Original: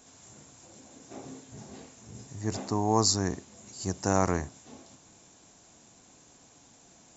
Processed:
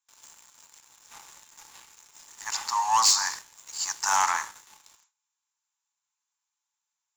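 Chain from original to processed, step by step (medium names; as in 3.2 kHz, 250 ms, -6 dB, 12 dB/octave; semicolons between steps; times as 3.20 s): Chebyshev high-pass 860 Hz, order 6; gated-style reverb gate 300 ms falling, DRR 10.5 dB; gate with hold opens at -46 dBFS; waveshaping leveller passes 3; loudspeaker Doppler distortion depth 0.12 ms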